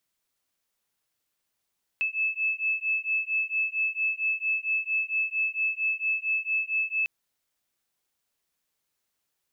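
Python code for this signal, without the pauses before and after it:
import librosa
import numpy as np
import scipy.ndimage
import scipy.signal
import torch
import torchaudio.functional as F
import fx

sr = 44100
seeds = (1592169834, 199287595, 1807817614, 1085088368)

y = fx.two_tone_beats(sr, length_s=5.05, hz=2610.0, beat_hz=4.4, level_db=-28.0)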